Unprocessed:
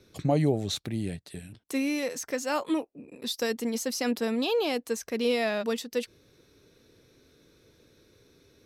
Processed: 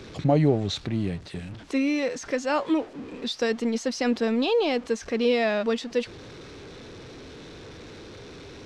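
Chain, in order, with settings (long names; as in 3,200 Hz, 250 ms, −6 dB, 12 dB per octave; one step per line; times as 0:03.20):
converter with a step at zero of −41 dBFS
Gaussian smoothing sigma 1.5 samples
level +3.5 dB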